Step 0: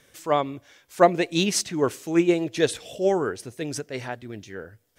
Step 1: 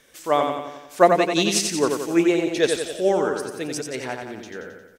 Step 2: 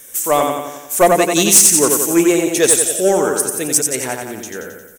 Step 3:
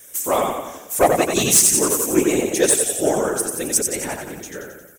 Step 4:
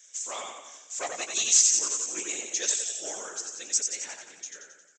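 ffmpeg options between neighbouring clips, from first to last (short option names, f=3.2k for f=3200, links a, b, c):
-filter_complex "[0:a]equalizer=f=110:w=1.4:g=-11,asplit=2[a][b];[b]aecho=0:1:89|178|267|356|445|534|623:0.562|0.315|0.176|0.0988|0.0553|0.031|0.0173[c];[a][c]amix=inputs=2:normalize=0,volume=2dB"
-af "aexciter=amount=11.2:drive=1.4:freq=6.5k,asoftclip=type=tanh:threshold=-10dB,volume=6.5dB"
-af "afftfilt=real='hypot(re,im)*cos(2*PI*random(0))':imag='hypot(re,im)*sin(2*PI*random(1))':win_size=512:overlap=0.75,volume=1.5dB"
-filter_complex "[0:a]aresample=16000,aresample=44100,aderivative,asplit=2[a][b];[b]adelay=17,volume=-13dB[c];[a][c]amix=inputs=2:normalize=0"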